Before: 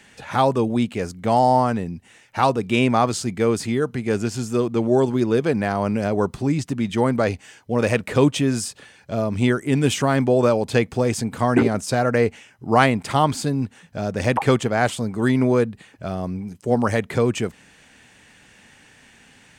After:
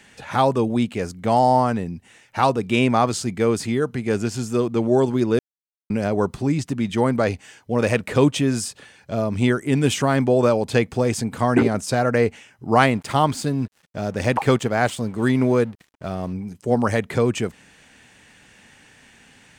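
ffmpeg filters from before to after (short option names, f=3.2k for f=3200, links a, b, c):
-filter_complex "[0:a]asettb=1/sr,asplit=3[a][b][c];[a]atrim=end=12.814[d];[b]atrim=start=12.81:end=16.33,asetpts=PTS-STARTPTS,afade=t=in:d=0.004:c=qsin,afade=t=out:st=3.516:d=0.004:c=qsin,aeval=exprs='sgn(val(0))*max(abs(val(0))-0.00562,0)':c=same[e];[c]atrim=start=16.326[f];[d][e]acrossfade=d=0.004:c1=hsin:c2=qsin[g];[g][f]acrossfade=d=0.004:c1=qsin:c2=hsin,asplit=3[h][i][j];[h]atrim=end=5.39,asetpts=PTS-STARTPTS,afade=t=out:st=5.386:d=0.004:c=hsin[k];[i]atrim=start=5.39:end=5.9,asetpts=PTS-STARTPTS,volume=0[l];[j]atrim=start=5.9,asetpts=PTS-STARTPTS,afade=t=in:d=0.004:c=hsin[m];[k][l][m]concat=n=3:v=0:a=1"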